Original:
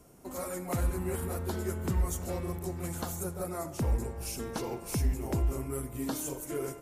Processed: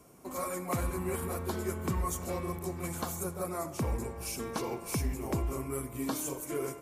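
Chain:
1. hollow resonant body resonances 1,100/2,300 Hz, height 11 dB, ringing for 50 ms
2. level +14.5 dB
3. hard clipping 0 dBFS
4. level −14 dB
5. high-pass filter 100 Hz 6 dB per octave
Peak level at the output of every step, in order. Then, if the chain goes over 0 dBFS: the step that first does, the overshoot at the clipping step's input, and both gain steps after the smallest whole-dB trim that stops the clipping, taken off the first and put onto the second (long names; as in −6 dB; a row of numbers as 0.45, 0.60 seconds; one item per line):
−18.5, −4.0, −4.0, −18.0, −19.0 dBFS
no step passes full scale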